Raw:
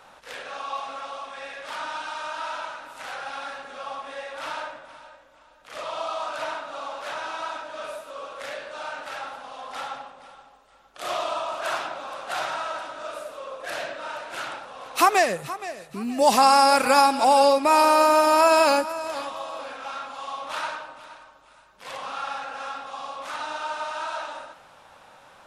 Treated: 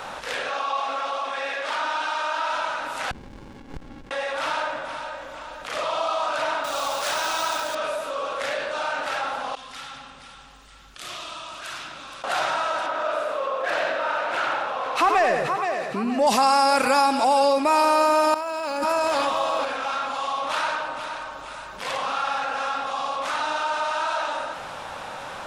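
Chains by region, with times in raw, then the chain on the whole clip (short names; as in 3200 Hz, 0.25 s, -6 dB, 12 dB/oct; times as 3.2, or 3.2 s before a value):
0.49–2.5 HPF 240 Hz + high shelf 11000 Hz -11 dB
3.11–4.11 flipped gate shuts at -30 dBFS, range -24 dB + running maximum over 65 samples
6.64–7.75 tone controls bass -3 dB, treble +13 dB + companded quantiser 4-bit
9.55–12.24 passive tone stack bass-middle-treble 6-0-2 + feedback echo 0.1 s, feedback 32%, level -15 dB
12.86–16.27 overdrive pedal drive 11 dB, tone 1400 Hz, clips at -6 dBFS + feedback echo 91 ms, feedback 35%, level -7 dB
18.34–19.65 negative-ratio compressor -30 dBFS + backlash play -50.5 dBFS
whole clip: bell 14000 Hz -6.5 dB 0.69 oct; fast leveller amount 50%; gain -3 dB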